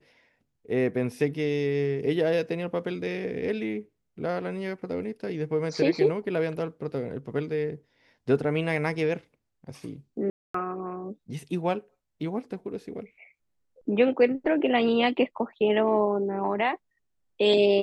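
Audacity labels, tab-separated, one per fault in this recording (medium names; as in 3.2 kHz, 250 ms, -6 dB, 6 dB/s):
10.300000	10.540000	dropout 244 ms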